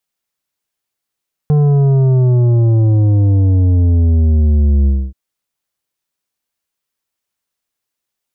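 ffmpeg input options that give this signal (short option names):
-f lavfi -i "aevalsrc='0.355*clip((3.63-t)/0.26,0,1)*tanh(2.82*sin(2*PI*150*3.63/log(65/150)*(exp(log(65/150)*t/3.63)-1)))/tanh(2.82)':d=3.63:s=44100"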